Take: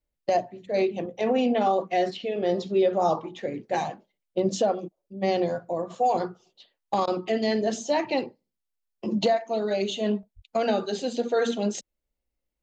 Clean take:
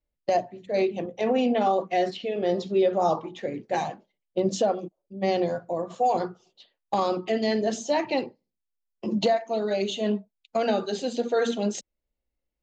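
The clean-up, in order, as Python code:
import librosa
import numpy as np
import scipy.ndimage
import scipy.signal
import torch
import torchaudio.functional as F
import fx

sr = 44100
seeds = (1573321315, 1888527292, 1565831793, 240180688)

y = fx.highpass(x, sr, hz=140.0, slope=24, at=(10.35, 10.47), fade=0.02)
y = fx.fix_interpolate(y, sr, at_s=(10.23,), length_ms=2.4)
y = fx.fix_interpolate(y, sr, at_s=(7.06,), length_ms=13.0)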